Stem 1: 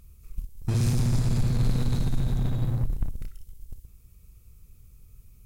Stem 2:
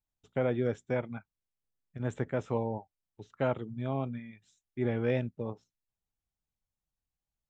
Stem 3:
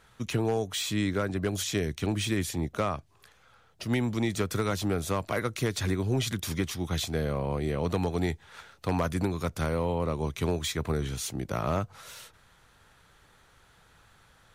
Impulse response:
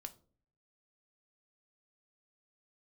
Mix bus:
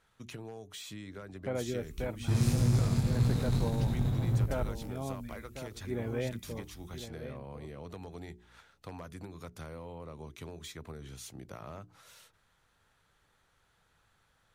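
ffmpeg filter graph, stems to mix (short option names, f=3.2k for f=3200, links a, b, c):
-filter_complex "[0:a]flanger=delay=16.5:depth=5.5:speed=1.8,highpass=41,adelay=1600,volume=0.5dB[a];[1:a]aeval=exprs='val(0)+0.001*(sin(2*PI*60*n/s)+sin(2*PI*2*60*n/s)/2+sin(2*PI*3*60*n/s)/3+sin(2*PI*4*60*n/s)/4+sin(2*PI*5*60*n/s)/5)':c=same,adelay=1100,volume=-5.5dB,asplit=2[b][c];[c]volume=-10.5dB[d];[2:a]bandreject=f=60:t=h:w=6,bandreject=f=120:t=h:w=6,bandreject=f=180:t=h:w=6,bandreject=f=240:t=h:w=6,bandreject=f=300:t=h:w=6,bandreject=f=360:t=h:w=6,bandreject=f=420:t=h:w=6,acompressor=threshold=-30dB:ratio=5,volume=-11dB[e];[d]aecho=0:1:1051:1[f];[a][b][e][f]amix=inputs=4:normalize=0"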